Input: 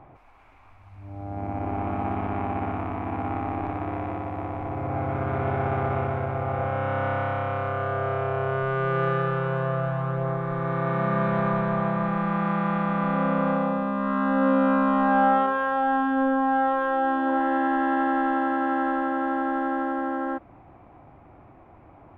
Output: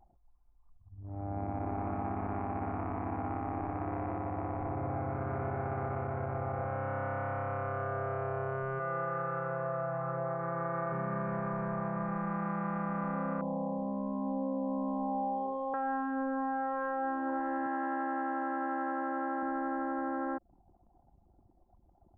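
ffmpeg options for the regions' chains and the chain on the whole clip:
-filter_complex "[0:a]asettb=1/sr,asplit=3[a][b][c];[a]atrim=end=8.794[d];[b]atrim=start=8.79:end=10.92,asetpts=PTS-STARTPTS,afade=t=in:d=0.004:c=qsin,afade=t=out:st=2.126:d=0.004:c=qsin,highpass=f=440:p=1,highshelf=f=3.1k:g=-11,aecho=1:1:6:0.95,atrim=end_sample=93933[e];[c]atrim=start=10.916[f];[d][e]acrossfade=d=0.004:c1=hsin:c2=qsin[g];[g][f]acrossfade=d=0.004:c1=qsin:c2=hsin,asettb=1/sr,asplit=3[h][i][j];[h]atrim=end=13.414[k];[i]atrim=start=13.41:end=15.74,asetpts=PTS-STARTPTS,afade=t=in:d=0.004:c=qsin,afade=t=out:st=2.326:d=0.004:c=qsin,acrusher=bits=6:mix=0:aa=0.5,asuperstop=centerf=1800:order=20:qfactor=0.87[l];[j]atrim=start=15.736[m];[k][l]acrossfade=d=0.004:c1=hsin:c2=qsin[n];[n][m]acrossfade=d=0.004:c1=qsin:c2=hsin,asettb=1/sr,asplit=3[o][p][q];[o]atrim=end=17.664[r];[p]atrim=start=17.66:end=19.43,asetpts=PTS-STARTPTS,afade=t=in:d=0.004:c=qsin,afade=t=out:st=1.766:d=0.004:c=qsin,highpass=140,bass=f=250:g=-5,treble=f=4k:g=2[s];[q]atrim=start=19.426[t];[r][s]acrossfade=d=0.004:c1=hsin:c2=qsin[u];[u][t]acrossfade=d=0.004:c1=qsin:c2=hsin,lowpass=f=2.1k:w=0.5412,lowpass=f=2.1k:w=1.3066,acompressor=threshold=-29dB:ratio=6,anlmdn=0.398,volume=-2.5dB"

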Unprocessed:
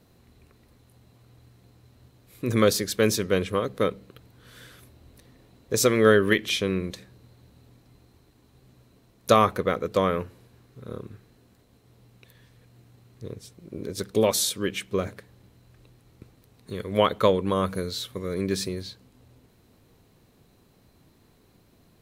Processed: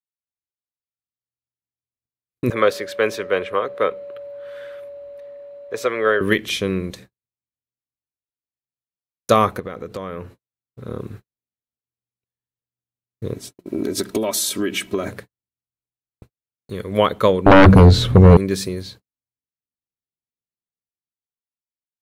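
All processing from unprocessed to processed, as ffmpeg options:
-filter_complex "[0:a]asettb=1/sr,asplit=3[a][b][c];[a]atrim=end=2.504[d];[b]atrim=start=2.5:end=6.21,asetpts=PTS-STARTPTS,afade=t=in:d=0.004:c=qsin,afade=t=out:st=3.706:d=0.004:c=qsin,acrossover=split=440 3200:gain=0.112 1 0.126[e][f][g];[e][f][g]amix=inputs=3:normalize=0,aeval=exprs='val(0)+0.01*sin(2*PI*570*n/s)':c=same[h];[c]atrim=start=6.206[i];[d][h]acrossfade=d=0.004:c1=hsin:c2=qsin[j];[j][i]acrossfade=d=0.004:c1=qsin:c2=hsin,asettb=1/sr,asplit=3[k][l][m];[k]atrim=end=9.594[n];[l]atrim=start=9.59:end=11,asetpts=PTS-STARTPTS,afade=t=in:d=0.004:c=qsin,afade=t=out:st=1.406:d=0.004:c=qsin,highshelf=f=8k:g=-5.5,acompressor=threshold=-30dB:ratio=5:attack=3.2:release=140:knee=1:detection=peak[o];[m]atrim=start=10.996[p];[n][o]acrossfade=d=0.004:c1=hsin:c2=qsin[q];[q][p]acrossfade=d=0.004:c1=qsin:c2=hsin,asettb=1/sr,asplit=3[r][s][t];[r]atrim=end=13.344[u];[s]atrim=start=13.34:end=15.08,asetpts=PTS-STARTPTS,afade=t=in:d=0.004:c=qsin,afade=t=out:st=1.736:d=0.004:c=qsin,lowshelf=f=120:t=q:w=1.5:g=-8.5,acompressor=threshold=-28dB:ratio=8:attack=3.2:release=140:knee=1:detection=peak,aecho=1:1:3.1:0.65,atrim=end_sample=76734[v];[t]atrim=start=15.076[w];[u][v]acrossfade=d=0.004:c1=hsin:c2=qsin[x];[x][w]acrossfade=d=0.004:c1=qsin:c2=hsin,asettb=1/sr,asplit=3[y][z][aa];[y]atrim=end=17.464[ab];[z]atrim=start=17.46:end=18.37,asetpts=PTS-STARTPTS,afade=t=in:d=0.004:c=qsin,afade=t=out:st=0.906:d=0.004:c=qsin,aemphasis=mode=reproduction:type=riaa,aeval=exprs='0.398*sin(PI/2*3.55*val(0)/0.398)':c=same[ac];[aa]atrim=start=18.366[ad];[ab][ac]acrossfade=d=0.004:c1=hsin:c2=qsin[ae];[ae][ad]acrossfade=d=0.004:c1=qsin:c2=hsin,agate=range=-54dB:threshold=-45dB:ratio=16:detection=peak,equalizer=f=4.3k:t=o:w=1.6:g=-2.5,dynaudnorm=f=130:g=21:m=11.5dB,volume=-1dB"

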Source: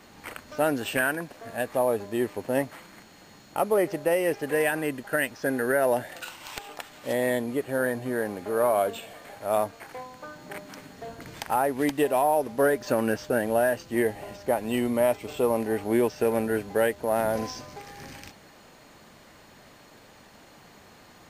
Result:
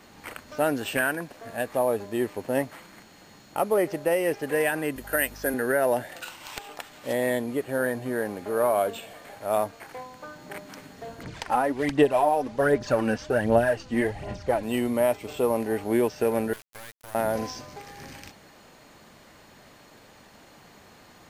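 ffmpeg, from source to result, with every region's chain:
-filter_complex "[0:a]asettb=1/sr,asplit=3[a][b][c];[a]atrim=end=4.964[d];[b]atrim=start=4.96:end=5.54,asetpts=PTS-STARTPTS,afade=t=in:d=0.004:c=qsin,afade=t=out:st=0.576:d=0.004:c=qsin,highpass=250,equalizer=f=13k:t=o:w=0.93:g=11,aeval=exprs='val(0)+0.00562*(sin(2*PI*50*n/s)+sin(2*PI*2*50*n/s)/2+sin(2*PI*3*50*n/s)/3+sin(2*PI*4*50*n/s)/4+sin(2*PI*5*50*n/s)/5)':c=same[e];[c]atrim=start=5.536[f];[d][e]acrossfade=d=0.004:c1=hsin:c2=qsin[g];[g][f]acrossfade=d=0.004:c1=qsin:c2=hsin,asettb=1/sr,asplit=3[h][i][j];[h]atrim=end=11.234[k];[i]atrim=start=11.23:end=14.63,asetpts=PTS-STARTPTS,afade=t=in:d=0.004:c=qsin,afade=t=out:st=3.396:d=0.004:c=qsin,lowpass=6.9k,asubboost=boost=2.5:cutoff=200,aphaser=in_gain=1:out_gain=1:delay=4.1:decay=0.52:speed=1.3:type=sinusoidal[l];[j]atrim=start=14.626[m];[k][l]acrossfade=d=0.004:c1=hsin:c2=qsin[n];[n][m]acrossfade=d=0.004:c1=qsin:c2=hsin,asettb=1/sr,asplit=3[o][p][q];[o]atrim=end=16.534[r];[p]atrim=start=16.53:end=17.15,asetpts=PTS-STARTPTS,afade=t=in:d=0.004:c=qsin,afade=t=out:st=0.616:d=0.004:c=qsin,highpass=1.1k,acompressor=threshold=-36dB:ratio=4:attack=3.2:release=140:knee=1:detection=peak,acrusher=bits=4:dc=4:mix=0:aa=0.000001[s];[q]atrim=start=17.146[t];[r][s]acrossfade=d=0.004:c1=hsin:c2=qsin[u];[u][t]acrossfade=d=0.004:c1=qsin:c2=hsin"

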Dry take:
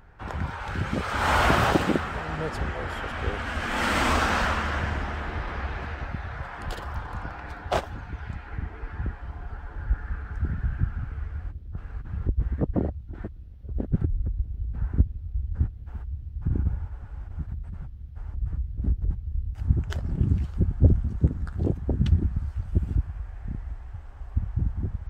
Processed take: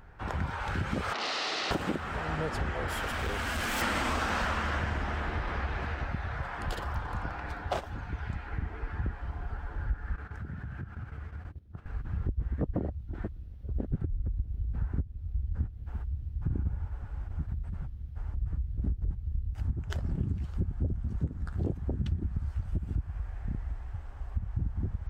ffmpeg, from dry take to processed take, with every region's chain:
-filter_complex "[0:a]asettb=1/sr,asplit=3[a][b][c];[a]atrim=end=1.134[d];[b]atrim=start=1.13:end=1.71,asetpts=PTS-STARTPTS,afade=t=in:d=0.004:c=qsin,afade=t=out:st=0.576:d=0.004:c=qsin,aeval=exprs='(mod(10*val(0)+1,2)-1)/10':c=same,highpass=440,equalizer=f=540:t=q:w=4:g=-5,equalizer=f=960:t=q:w=4:g=-7,equalizer=f=1.6k:t=q:w=4:g=-8,equalizer=f=2.3k:t=q:w=4:g=-7,equalizer=f=3.3k:t=q:w=4:g=-6,lowpass=f=4.4k:w=0.5412,lowpass=f=4.4k:w=1.3066[e];[c]atrim=start=1.706[f];[d][e]acrossfade=d=0.004:c1=hsin:c2=qsin[g];[g][f]acrossfade=d=0.004:c1=qsin:c2=hsin,asettb=1/sr,asplit=3[h][i][j];[h]atrim=end=2.884[k];[i]atrim=start=2.88:end=3.82,asetpts=PTS-STARTPTS,afade=t=in:d=0.004:c=qsin,afade=t=out:st=0.936:d=0.004:c=qsin,aemphasis=mode=production:type=50fm,volume=28dB,asoftclip=hard,volume=-28dB[l];[j]atrim=start=3.816[m];[k][l]acrossfade=d=0.004:c1=hsin:c2=qsin[n];[n][m]acrossfade=d=0.004:c1=qsin:c2=hsin,asettb=1/sr,asplit=3[o][p][q];[o]atrim=end=10.164[r];[p]atrim=start=10.16:end=11.86,asetpts=PTS-STARTPTS,afade=t=in:d=0.004:c=qsin,afade=t=out:st=1.696:d=0.004:c=qsin,highpass=88,agate=range=-10dB:threshold=-42dB:ratio=16:release=100:detection=peak,acompressor=threshold=-35dB:ratio=6:attack=3.2:release=140:knee=1:detection=peak[s];[q]atrim=start=11.856[t];[r][s]acrossfade=d=0.004:c1=hsin:c2=qsin[u];[u][t]acrossfade=d=0.004:c1=qsin:c2=hsin,alimiter=limit=-14dB:level=0:latency=1:release=362,acompressor=threshold=-28dB:ratio=3"

